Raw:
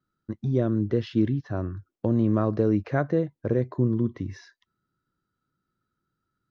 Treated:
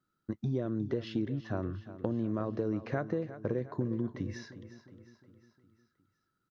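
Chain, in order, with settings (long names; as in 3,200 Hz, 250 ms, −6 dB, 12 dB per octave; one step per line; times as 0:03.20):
low-shelf EQ 120 Hz −7 dB
downward compressor, threshold −29 dBFS, peak gain reduction 10.5 dB
repeating echo 358 ms, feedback 52%, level −14 dB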